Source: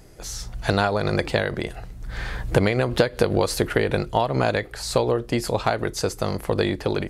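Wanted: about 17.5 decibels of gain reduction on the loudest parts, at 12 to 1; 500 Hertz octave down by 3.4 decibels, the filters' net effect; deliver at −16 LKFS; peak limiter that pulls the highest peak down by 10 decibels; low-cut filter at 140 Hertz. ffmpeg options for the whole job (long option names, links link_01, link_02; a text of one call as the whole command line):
ffmpeg -i in.wav -af "highpass=140,equalizer=frequency=500:width_type=o:gain=-4,acompressor=threshold=-35dB:ratio=12,volume=25.5dB,alimiter=limit=-1.5dB:level=0:latency=1" out.wav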